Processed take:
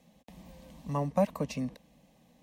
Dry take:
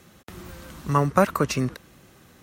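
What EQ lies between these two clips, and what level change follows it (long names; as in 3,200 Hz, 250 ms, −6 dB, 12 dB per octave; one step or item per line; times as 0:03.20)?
high-shelf EQ 3,800 Hz −11 dB
phaser with its sweep stopped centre 370 Hz, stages 6
−5.5 dB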